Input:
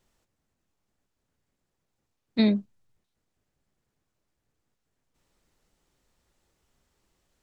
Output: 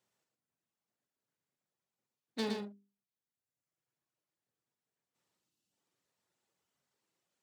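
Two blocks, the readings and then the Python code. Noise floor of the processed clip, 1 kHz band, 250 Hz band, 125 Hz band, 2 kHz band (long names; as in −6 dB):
below −85 dBFS, −1.0 dB, −16.5 dB, can't be measured, −7.5 dB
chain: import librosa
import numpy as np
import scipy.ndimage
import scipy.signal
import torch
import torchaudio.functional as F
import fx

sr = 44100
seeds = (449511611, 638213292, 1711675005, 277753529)

y = np.minimum(x, 2.0 * 10.0 ** (-25.5 / 20.0) - x)
y = fx.dereverb_blind(y, sr, rt60_s=1.3)
y = fx.spec_box(y, sr, start_s=5.37, length_s=0.35, low_hz=380.0, high_hz=2500.0, gain_db=-11)
y = scipy.signal.sosfilt(scipy.signal.butter(4, 110.0, 'highpass', fs=sr, output='sos'), y)
y = fx.low_shelf(y, sr, hz=380.0, db=-4.5)
y = fx.hum_notches(y, sr, base_hz=50, count=8)
y = fx.doubler(y, sr, ms=44.0, db=-10.0)
y = y + 10.0 ** (-4.5 / 20.0) * np.pad(y, (int(113 * sr / 1000.0), 0))[:len(y)]
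y = y * librosa.db_to_amplitude(-8.0)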